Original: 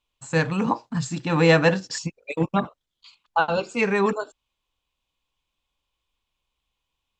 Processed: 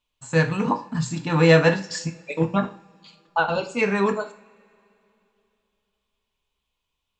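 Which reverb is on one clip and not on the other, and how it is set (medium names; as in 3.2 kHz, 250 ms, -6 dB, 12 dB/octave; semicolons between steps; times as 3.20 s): two-slope reverb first 0.4 s, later 3.1 s, from -27 dB, DRR 5 dB; trim -1 dB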